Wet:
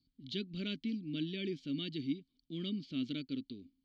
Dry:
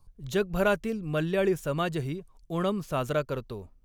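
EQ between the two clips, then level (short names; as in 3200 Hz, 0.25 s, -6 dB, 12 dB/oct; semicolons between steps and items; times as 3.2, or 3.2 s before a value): vowel filter i; synth low-pass 4500 Hz, resonance Q 6.6; band shelf 990 Hz -11 dB 2.7 oct; +6.0 dB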